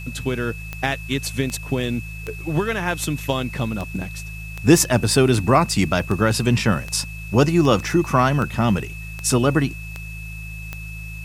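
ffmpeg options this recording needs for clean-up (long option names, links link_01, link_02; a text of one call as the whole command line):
ffmpeg -i in.wav -af "adeclick=threshold=4,bandreject=frequency=53.6:width_type=h:width=4,bandreject=frequency=107.2:width_type=h:width=4,bandreject=frequency=160.8:width_type=h:width=4,bandreject=frequency=2600:width=30,agate=range=-21dB:threshold=-25dB" out.wav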